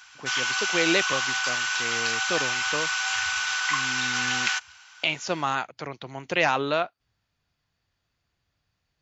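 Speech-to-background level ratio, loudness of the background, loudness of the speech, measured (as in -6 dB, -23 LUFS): -4.0 dB, -25.0 LUFS, -29.0 LUFS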